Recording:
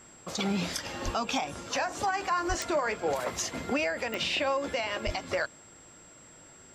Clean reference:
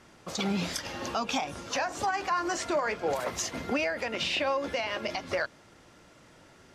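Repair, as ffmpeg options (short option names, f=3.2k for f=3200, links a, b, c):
-filter_complex "[0:a]adeclick=t=4,bandreject=f=7.6k:w=30,asplit=3[a][b][c];[a]afade=t=out:st=1.04:d=0.02[d];[b]highpass=f=140:w=0.5412,highpass=f=140:w=1.3066,afade=t=in:st=1.04:d=0.02,afade=t=out:st=1.16:d=0.02[e];[c]afade=t=in:st=1.16:d=0.02[f];[d][e][f]amix=inputs=3:normalize=0,asplit=3[g][h][i];[g]afade=t=out:st=2.48:d=0.02[j];[h]highpass=f=140:w=0.5412,highpass=f=140:w=1.3066,afade=t=in:st=2.48:d=0.02,afade=t=out:st=2.6:d=0.02[k];[i]afade=t=in:st=2.6:d=0.02[l];[j][k][l]amix=inputs=3:normalize=0,asplit=3[m][n][o];[m]afade=t=out:st=5.05:d=0.02[p];[n]highpass=f=140:w=0.5412,highpass=f=140:w=1.3066,afade=t=in:st=5.05:d=0.02,afade=t=out:st=5.17:d=0.02[q];[o]afade=t=in:st=5.17:d=0.02[r];[p][q][r]amix=inputs=3:normalize=0"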